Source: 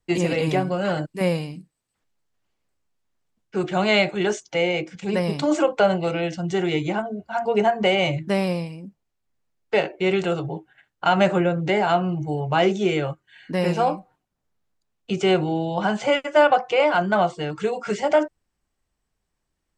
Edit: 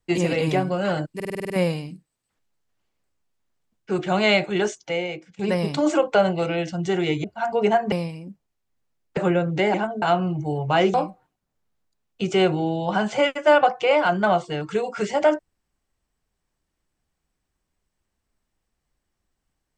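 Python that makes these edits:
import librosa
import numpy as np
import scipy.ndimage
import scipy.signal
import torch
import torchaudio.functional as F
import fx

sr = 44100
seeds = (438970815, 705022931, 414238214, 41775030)

y = fx.edit(x, sr, fx.stutter(start_s=1.15, slice_s=0.05, count=8),
    fx.fade_out_to(start_s=4.28, length_s=0.76, floor_db=-16.0),
    fx.move(start_s=6.89, length_s=0.28, to_s=11.84),
    fx.cut(start_s=7.85, length_s=0.64),
    fx.cut(start_s=9.74, length_s=1.53),
    fx.cut(start_s=12.76, length_s=1.07), tone=tone)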